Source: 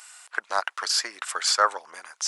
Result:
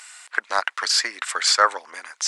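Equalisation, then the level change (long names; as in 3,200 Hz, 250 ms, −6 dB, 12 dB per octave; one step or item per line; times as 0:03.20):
graphic EQ with 10 bands 250 Hz +11 dB, 500 Hz +5 dB, 1,000 Hz +4 dB, 2,000 Hz +11 dB, 4,000 Hz +7 dB, 8,000 Hz +7 dB
−5.0 dB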